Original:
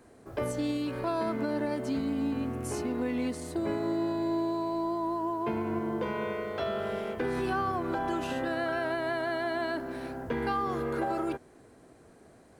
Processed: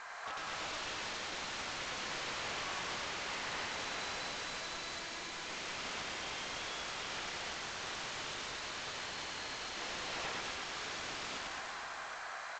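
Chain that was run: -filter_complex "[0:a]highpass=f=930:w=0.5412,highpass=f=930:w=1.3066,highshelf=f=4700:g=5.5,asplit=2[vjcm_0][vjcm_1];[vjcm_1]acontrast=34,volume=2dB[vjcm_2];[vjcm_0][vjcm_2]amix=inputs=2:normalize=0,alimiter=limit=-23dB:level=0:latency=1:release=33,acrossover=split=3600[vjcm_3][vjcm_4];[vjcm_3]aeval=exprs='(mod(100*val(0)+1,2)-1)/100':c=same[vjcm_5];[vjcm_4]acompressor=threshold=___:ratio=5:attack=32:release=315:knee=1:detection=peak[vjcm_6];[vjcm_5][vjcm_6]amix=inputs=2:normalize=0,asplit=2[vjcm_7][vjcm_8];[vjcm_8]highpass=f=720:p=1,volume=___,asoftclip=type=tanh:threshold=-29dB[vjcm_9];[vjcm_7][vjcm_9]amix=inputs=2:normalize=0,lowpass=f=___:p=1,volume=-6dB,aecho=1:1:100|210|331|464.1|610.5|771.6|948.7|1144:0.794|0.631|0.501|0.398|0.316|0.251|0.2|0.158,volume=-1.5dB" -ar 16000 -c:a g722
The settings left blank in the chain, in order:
-52dB, 19dB, 1800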